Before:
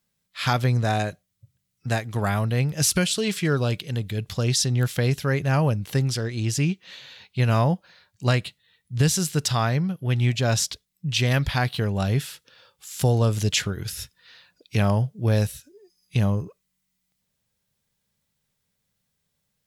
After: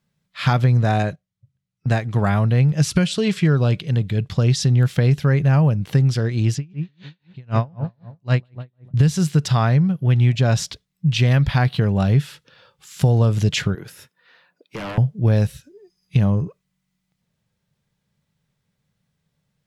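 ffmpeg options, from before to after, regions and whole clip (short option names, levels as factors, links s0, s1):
-filter_complex "[0:a]asettb=1/sr,asplit=3[s0][s1][s2];[s0]atrim=end=1.034[s3];[s1]atrim=start=1.03:end=4.62,asetpts=PTS-STARTPTS,afade=t=in:d=0.004:c=qsin,afade=t=out:st=3.586:d=0.004:c=qsin,agate=range=0.316:threshold=0.00631:ratio=16:release=100:detection=peak,lowpass=11000[s4];[s2]atrim=start=4.616[s5];[s3][s4]acrossfade=d=0.004:c1=hsin:c2=qsin[s6];[s6][s5]acrossfade=d=0.004:c1=qsin:c2=hsin,asettb=1/sr,asplit=3[s7][s8][s9];[s7]atrim=end=6.554[s10];[s8]atrim=start=6.55:end=8.94,asetpts=PTS-STARTPTS,afade=t=in:d=0.004:c=qsin,afade=t=out:st=2.386:d=0.004:c=qsin,lowpass=6700,asplit=2[s11][s12];[s12]adelay=151,lowpass=f=1600:p=1,volume=0.251,asplit=2[s13][s14];[s14]adelay=151,lowpass=f=1600:p=1,volume=0.48,asplit=2[s15][s16];[s16]adelay=151,lowpass=f=1600:p=1,volume=0.48,asplit=2[s17][s18];[s18]adelay=151,lowpass=f=1600:p=1,volume=0.48,asplit=2[s19][s20];[s20]adelay=151,lowpass=f=1600:p=1,volume=0.48[s21];[s11][s13][s15][s17][s19][s21]amix=inputs=6:normalize=0,atrim=end_sample=105399,aeval=exprs='val(0)*pow(10,-37*(0.5-0.5*cos(2*PI*3.9*n/s))/20)':c=same[s22];[s9]atrim=start=8.936[s23];[s10][s22]acrossfade=d=0.004:c1=hsin:c2=qsin[s24];[s24][s23]acrossfade=d=0.004:c1=qsin:c2=hsin,asettb=1/sr,asplit=3[s25][s26][s27];[s25]atrim=end=13.754[s28];[s26]atrim=start=13.75:end=14.98,asetpts=PTS-STARTPTS,afade=t=in:d=0.004:c=qsin,afade=t=out:st=1.226:d=0.004:c=qsin,highpass=320,equalizer=f=4700:w=0.59:g=-10,aeval=exprs='0.0376*(abs(mod(val(0)/0.0376+3,4)-2)-1)':c=same[s29];[s27]atrim=start=14.976[s30];[s28][s29]acrossfade=d=0.004:c1=hsin:c2=qsin[s31];[s31][s30]acrossfade=d=0.004:c1=qsin:c2=hsin,lowpass=f=2700:p=1,equalizer=f=150:w=2:g=7.5,acompressor=threshold=0.141:ratio=4,volume=1.68"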